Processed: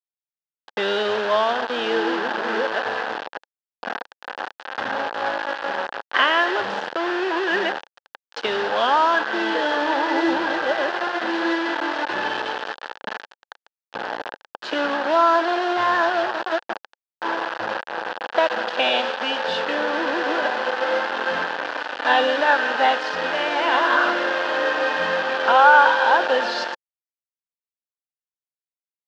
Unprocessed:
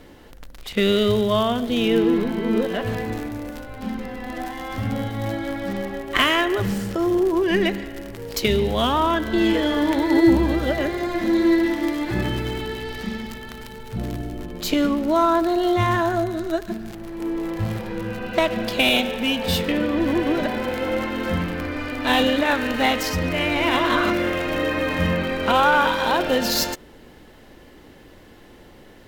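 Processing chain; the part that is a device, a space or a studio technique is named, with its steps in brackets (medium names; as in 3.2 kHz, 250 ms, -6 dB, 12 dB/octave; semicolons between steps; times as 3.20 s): hand-held game console (bit crusher 4-bit; cabinet simulation 500–4000 Hz, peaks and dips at 530 Hz +4 dB, 850 Hz +7 dB, 1.6 kHz +9 dB, 2.2 kHz -9 dB, 3.8 kHz -3 dB)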